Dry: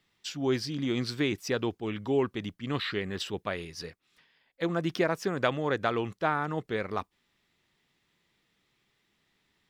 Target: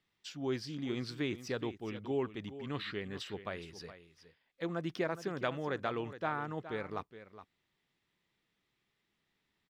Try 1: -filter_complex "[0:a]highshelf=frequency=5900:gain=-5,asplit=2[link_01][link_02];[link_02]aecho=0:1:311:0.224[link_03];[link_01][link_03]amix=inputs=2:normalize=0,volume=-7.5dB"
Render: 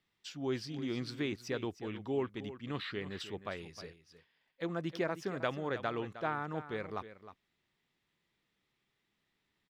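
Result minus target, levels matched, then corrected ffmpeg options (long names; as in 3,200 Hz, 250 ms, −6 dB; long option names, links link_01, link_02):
echo 106 ms early
-filter_complex "[0:a]highshelf=frequency=5900:gain=-5,asplit=2[link_01][link_02];[link_02]aecho=0:1:417:0.224[link_03];[link_01][link_03]amix=inputs=2:normalize=0,volume=-7.5dB"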